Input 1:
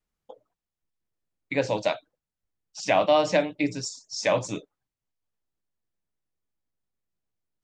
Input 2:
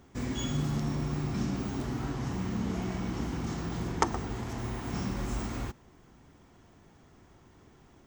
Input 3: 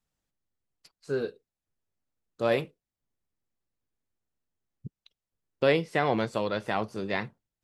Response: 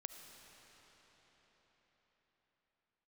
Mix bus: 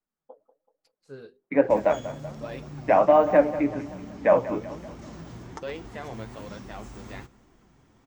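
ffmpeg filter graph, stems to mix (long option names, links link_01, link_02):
-filter_complex "[0:a]lowpass=frequency=1700:width=0.5412,lowpass=frequency=1700:width=1.3066,dynaudnorm=framelen=520:gausssize=3:maxgain=9dB,highpass=frequency=170:width=0.5412,highpass=frequency=170:width=1.3066,volume=0dB,asplit=3[link_01][link_02][link_03];[link_02]volume=-24dB[link_04];[link_03]volume=-14dB[link_05];[1:a]acompressor=threshold=-37dB:ratio=4,adelay=1550,volume=2dB,asplit=2[link_06][link_07];[link_07]volume=-19.5dB[link_08];[2:a]bandreject=frequency=50:width_type=h:width=6,bandreject=frequency=100:width_type=h:width=6,bandreject=frequency=150:width_type=h:width=6,bandreject=frequency=200:width_type=h:width=6,bandreject=frequency=250:width_type=h:width=6,bandreject=frequency=300:width_type=h:width=6,bandreject=frequency=350:width_type=h:width=6,bandreject=frequency=400:width_type=h:width=6,volume=-8.5dB[link_09];[3:a]atrim=start_sample=2205[link_10];[link_04][link_10]afir=irnorm=-1:irlink=0[link_11];[link_05][link_08]amix=inputs=2:normalize=0,aecho=0:1:190|380|570|760|950|1140|1330:1|0.5|0.25|0.125|0.0625|0.0312|0.0156[link_12];[link_01][link_06][link_09][link_11][link_12]amix=inputs=5:normalize=0,flanger=delay=2.4:depth=7.2:regen=57:speed=1.2:shape=triangular"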